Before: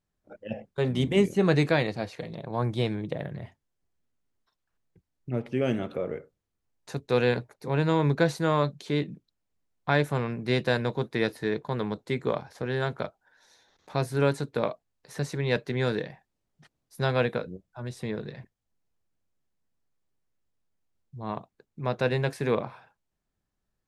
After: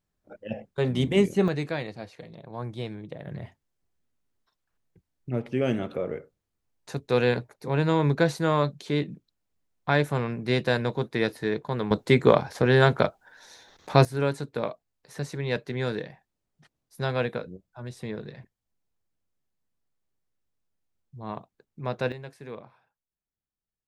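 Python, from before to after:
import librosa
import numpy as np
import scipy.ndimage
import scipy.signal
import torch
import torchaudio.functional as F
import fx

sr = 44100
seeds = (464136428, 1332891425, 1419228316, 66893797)

y = fx.gain(x, sr, db=fx.steps((0.0, 1.0), (1.48, -7.0), (3.27, 1.0), (11.91, 10.0), (14.05, -2.0), (22.12, -14.0)))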